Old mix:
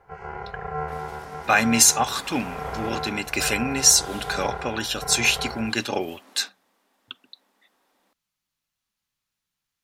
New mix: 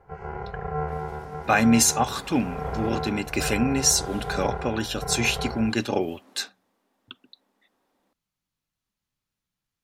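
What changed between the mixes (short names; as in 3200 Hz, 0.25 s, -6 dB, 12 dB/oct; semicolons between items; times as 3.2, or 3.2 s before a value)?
second sound -3.5 dB; master: add tilt shelf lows +5 dB, about 700 Hz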